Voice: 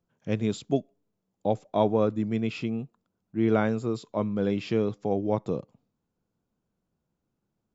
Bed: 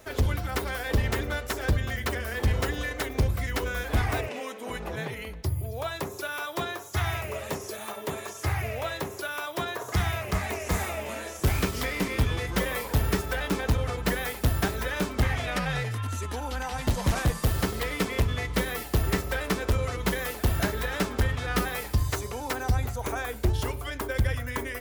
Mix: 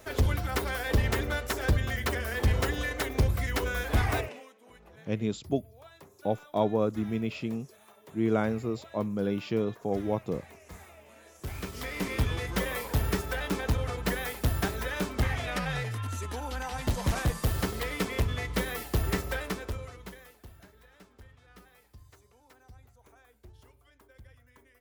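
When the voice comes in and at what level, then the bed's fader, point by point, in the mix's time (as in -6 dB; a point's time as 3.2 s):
4.80 s, -3.0 dB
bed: 4.19 s -0.5 dB
4.54 s -20 dB
11.12 s -20 dB
12.09 s -3 dB
19.34 s -3 dB
20.61 s -28 dB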